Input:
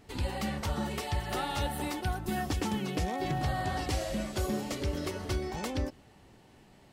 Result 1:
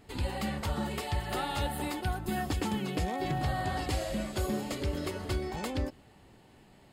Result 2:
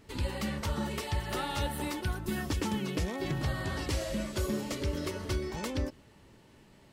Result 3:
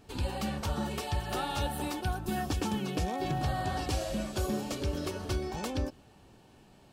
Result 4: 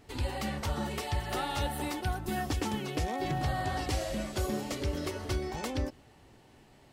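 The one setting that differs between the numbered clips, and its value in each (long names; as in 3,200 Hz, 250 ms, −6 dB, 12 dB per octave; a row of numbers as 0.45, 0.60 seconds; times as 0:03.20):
notch filter, centre frequency: 5,800, 750, 2,000, 190 Hertz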